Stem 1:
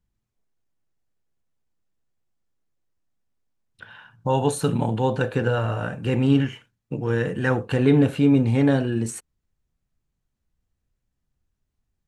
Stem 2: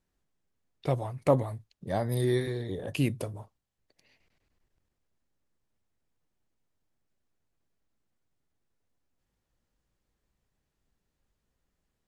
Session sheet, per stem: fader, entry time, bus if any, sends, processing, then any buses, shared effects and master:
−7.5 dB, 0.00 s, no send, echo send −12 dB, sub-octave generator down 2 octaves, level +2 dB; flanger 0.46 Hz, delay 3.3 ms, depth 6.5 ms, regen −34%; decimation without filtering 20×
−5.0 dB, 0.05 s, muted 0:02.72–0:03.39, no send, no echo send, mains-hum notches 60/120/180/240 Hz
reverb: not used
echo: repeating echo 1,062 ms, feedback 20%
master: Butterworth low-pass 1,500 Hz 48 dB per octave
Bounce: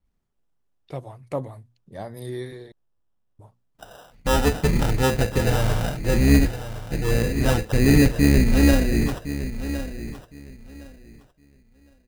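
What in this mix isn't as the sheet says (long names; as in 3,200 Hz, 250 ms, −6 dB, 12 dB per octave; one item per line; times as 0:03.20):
stem 1 −7.5 dB → +3.5 dB
master: missing Butterworth low-pass 1,500 Hz 48 dB per octave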